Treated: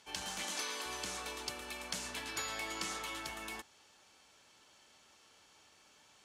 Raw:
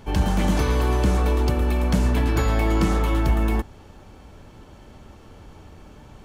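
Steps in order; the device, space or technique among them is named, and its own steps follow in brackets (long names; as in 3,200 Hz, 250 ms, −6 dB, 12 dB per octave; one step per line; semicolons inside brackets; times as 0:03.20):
piezo pickup straight into a mixer (low-pass filter 7,100 Hz 12 dB per octave; first difference)
0:00.43–0:00.86: high-pass filter 210 Hz 24 dB per octave
level +1.5 dB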